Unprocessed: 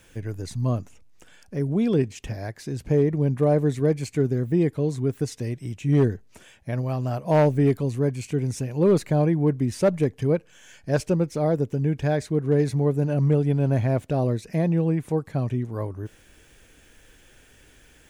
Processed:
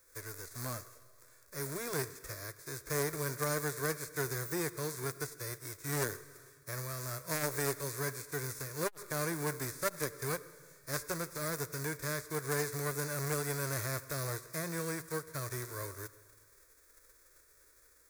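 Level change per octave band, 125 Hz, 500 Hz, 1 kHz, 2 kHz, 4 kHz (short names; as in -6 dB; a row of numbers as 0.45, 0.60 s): -17.5, -14.5, -8.0, +0.5, -0.5 dB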